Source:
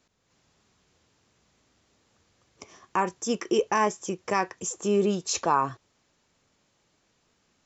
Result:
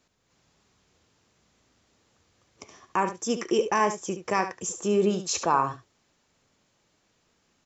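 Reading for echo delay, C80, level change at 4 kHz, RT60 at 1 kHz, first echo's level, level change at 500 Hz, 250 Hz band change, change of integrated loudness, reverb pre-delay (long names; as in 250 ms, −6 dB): 72 ms, no reverb audible, +0.5 dB, no reverb audible, −10.5 dB, +0.5 dB, 0.0 dB, +0.5 dB, no reverb audible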